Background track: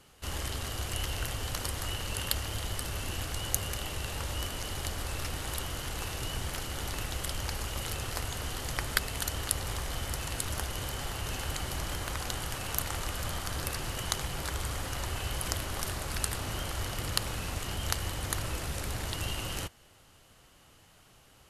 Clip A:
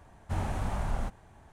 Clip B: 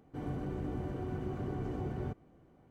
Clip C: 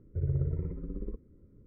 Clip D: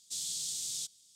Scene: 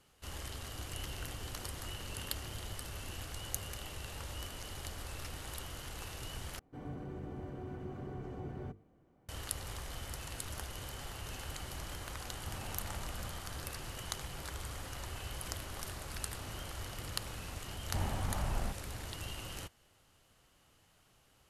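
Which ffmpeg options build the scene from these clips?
-filter_complex "[2:a]asplit=2[s0][s1];[1:a]asplit=2[s2][s3];[0:a]volume=0.376[s4];[s1]bandreject=f=50:t=h:w=6,bandreject=f=100:t=h:w=6,bandreject=f=150:t=h:w=6,bandreject=f=200:t=h:w=6,bandreject=f=250:t=h:w=6,bandreject=f=300:t=h:w=6,bandreject=f=350:t=h:w=6,bandreject=f=400:t=h:w=6,bandreject=f=450:t=h:w=6[s5];[s2]acompressor=threshold=0.0178:ratio=6:attack=3.2:release=140:knee=1:detection=peak[s6];[s4]asplit=2[s7][s8];[s7]atrim=end=6.594[s9];[s5]atrim=end=2.7,asetpts=PTS-STARTPTS,volume=0.562[s10];[s8]atrim=start=9.286[s11];[s0]atrim=end=2.7,asetpts=PTS-STARTPTS,volume=0.133,afade=t=in:d=0.004:c=hsin,afade=t=out:st=2.696:d=0.004:c=hsin,adelay=610[s12];[s6]atrim=end=1.52,asetpts=PTS-STARTPTS,volume=0.501,afade=t=in:d=0.004:c=hsin,afade=t=out:st=1.516:d=0.004:c=hsin,adelay=12170[s13];[s3]atrim=end=1.52,asetpts=PTS-STARTPTS,volume=0.596,afade=t=in:d=0.004:c=hsin,afade=t=out:st=1.516:d=0.004:c=hsin,adelay=17630[s14];[s9][s10]acrossfade=d=0.004:c1=hsin:c2=hsin[s15];[s15][s11]acrossfade=d=0.004:c1=hsin:c2=hsin[s16];[s16][s12][s13][s14]amix=inputs=4:normalize=0"

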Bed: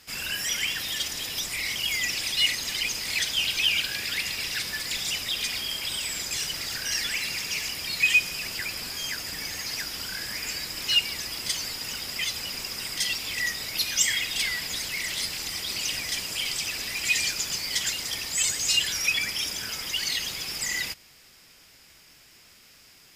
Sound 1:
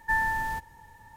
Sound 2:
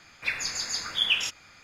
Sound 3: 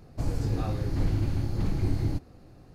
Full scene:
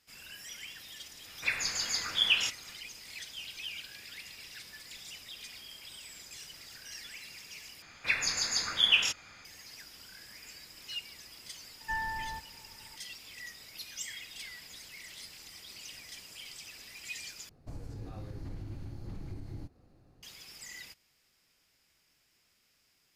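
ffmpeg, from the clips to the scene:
-filter_complex "[2:a]asplit=2[s0][s1];[0:a]volume=0.133[s2];[1:a]lowpass=f=2500:p=1[s3];[3:a]alimiter=limit=0.075:level=0:latency=1:release=146[s4];[s2]asplit=3[s5][s6][s7];[s5]atrim=end=7.824[s8];[s1]atrim=end=1.63[s9];[s6]atrim=start=9.446:end=17.494[s10];[s4]atrim=end=2.74,asetpts=PTS-STARTPTS,volume=0.282[s11];[s7]atrim=start=20.226[s12];[s0]atrim=end=1.63,asetpts=PTS-STARTPTS,volume=0.794,afade=t=in:d=0.1,afade=t=out:st=1.53:d=0.1,adelay=1200[s13];[s3]atrim=end=1.16,asetpts=PTS-STARTPTS,volume=0.422,afade=t=in:d=0.004:c=hsin,afade=t=out:st=1.156:d=0.004:c=hsin,adelay=11800[s14];[s8][s9]acrossfade=d=0.004:c1=hsin:c2=hsin[s15];[s15][s10]acrossfade=d=0.004:c1=hsin:c2=hsin[s16];[s16][s11]acrossfade=d=0.004:c1=hsin:c2=hsin[s17];[s17][s12]acrossfade=d=0.004:c1=hsin:c2=hsin[s18];[s18][s13][s14]amix=inputs=3:normalize=0"

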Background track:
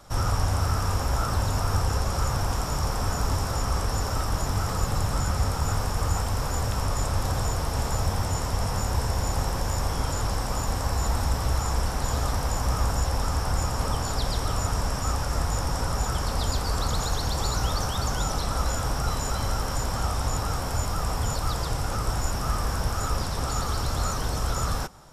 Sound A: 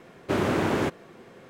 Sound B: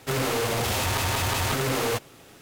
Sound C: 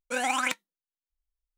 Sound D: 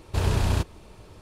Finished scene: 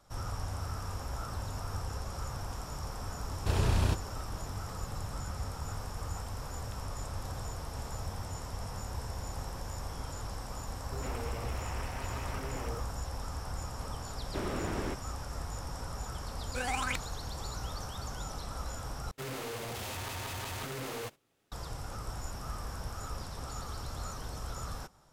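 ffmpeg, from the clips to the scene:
-filter_complex "[2:a]asplit=2[s0][s1];[0:a]volume=0.224[s2];[s0]afwtdn=0.0316[s3];[s1]agate=range=0.251:threshold=0.00447:ratio=16:release=100:detection=peak[s4];[s2]asplit=2[s5][s6];[s5]atrim=end=19.114[s7];[s4]atrim=end=2.41,asetpts=PTS-STARTPTS,volume=0.211[s8];[s6]atrim=start=21.516[s9];[4:a]atrim=end=1.21,asetpts=PTS-STARTPTS,volume=0.562,afade=t=in:d=0.004:c=hsin,afade=t=out:st=1.206:d=0.004:c=hsin,adelay=3320[s10];[s3]atrim=end=2.41,asetpts=PTS-STARTPTS,volume=0.178,afade=t=in:d=0.004:c=hsin,afade=t=out:st=2.406:d=0.004:c=hsin,adelay=10840[s11];[1:a]atrim=end=1.49,asetpts=PTS-STARTPTS,volume=0.251,afade=t=in:d=0.004:c=hsin,afade=t=out:st=1.486:d=0.004:c=hsin,adelay=14050[s12];[3:a]atrim=end=1.57,asetpts=PTS-STARTPTS,volume=0.447,afade=t=in:d=0.004:c=hsin,afade=t=out:st=1.566:d=0.004:c=hsin,adelay=16440[s13];[s7][s8]acrossfade=d=0.004:c1=hsin:c2=hsin[s14];[s14][s9]acrossfade=d=0.004:c1=hsin:c2=hsin[s15];[s15][s10][s11][s12][s13]amix=inputs=5:normalize=0"

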